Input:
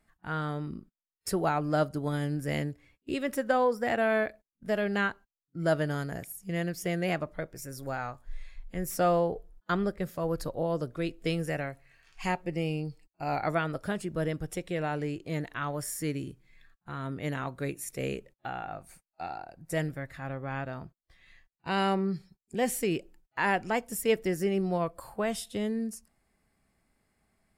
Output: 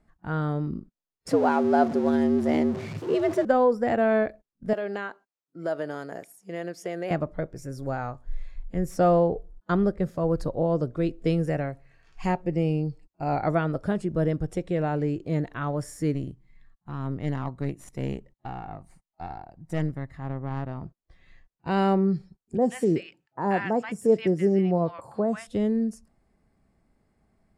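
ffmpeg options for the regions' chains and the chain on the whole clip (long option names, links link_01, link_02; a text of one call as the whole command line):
ffmpeg -i in.wav -filter_complex "[0:a]asettb=1/sr,asplit=3[link_01][link_02][link_03];[link_01]atrim=end=1.284[link_04];[link_02]atrim=start=1.28:end=3.45,asetpts=PTS-STARTPTS,afade=type=in:duration=0.004:curve=qsin,afade=type=out:start_time=2.166:duration=0.004:curve=qsin,aeval=exprs='val(0)+0.5*0.0224*sgn(val(0))':channel_layout=same,equalizer=frequency=10000:width=0.65:gain=-5.5,afreqshift=92[link_05];[link_03]atrim=start=3.446[link_06];[link_04][link_05]acrossfade=duration=0.004:curve1=hsin:curve2=qsin[link_07];[link_07][link_06]acrossfade=duration=0.004:curve1=qsin:curve2=hsin,asettb=1/sr,asplit=3[link_08][link_09][link_10];[link_08]atrim=end=4.734[link_11];[link_09]atrim=start=4.73:end=7.11,asetpts=PTS-STARTPTS,afade=type=in:duration=0.004:curve=qsin,afade=type=out:start_time=2.376:duration=0.004:curve=qsin,highpass=410,acompressor=threshold=-32dB:ratio=2:attack=3.2:release=140:knee=1:detection=peak[link_12];[link_10]atrim=start=7.106[link_13];[link_11][link_12]acrossfade=duration=0.004:curve1=hsin:curve2=qsin[link_14];[link_14][link_13]acrossfade=duration=0.004:curve1=qsin:curve2=hsin,asettb=1/sr,asplit=3[link_15][link_16][link_17];[link_15]atrim=end=16.144[link_18];[link_16]atrim=start=16.14:end=20.83,asetpts=PTS-STARTPTS,afade=type=in:duration=0.004:curve=qsin,afade=type=out:start_time=4.686:duration=0.004:curve=qsin,aecho=1:1:1:0.46,atrim=end_sample=206829,aeval=exprs='(tanh(20*val(0)+0.8)-tanh(0.8))/20':channel_layout=same[link_19];[link_17]atrim=start=20.826[link_20];[link_18][link_19]acrossfade=duration=0.004:curve1=hsin:curve2=qsin[link_21];[link_21][link_20]acrossfade=duration=0.004:curve1=qsin:curve2=hsin,asettb=1/sr,asplit=3[link_22][link_23][link_24];[link_22]atrim=end=22.574[link_25];[link_23]atrim=start=22.57:end=25.47,asetpts=PTS-STARTPTS,afade=type=in:duration=0.004:curve=qsin,afade=type=out:start_time=2.896:duration=0.004:curve=qsin,highpass=frequency=100:width=0.5412,highpass=frequency=100:width=1.3066,equalizer=frequency=13000:width_type=o:width=0.41:gain=-9,acrossover=split=1200|5300[link_26][link_27][link_28];[link_28]adelay=30[link_29];[link_27]adelay=130[link_30];[link_26][link_30][link_29]amix=inputs=3:normalize=0,atrim=end_sample=127890[link_31];[link_24]atrim=start=25.466[link_32];[link_25][link_31]acrossfade=duration=0.004:curve1=hsin:curve2=qsin[link_33];[link_33][link_32]acrossfade=duration=0.004:curve1=qsin:curve2=hsin,lowpass=5500,equalizer=frequency=2900:width_type=o:width=2.8:gain=-11.5,volume=7.5dB" out.wav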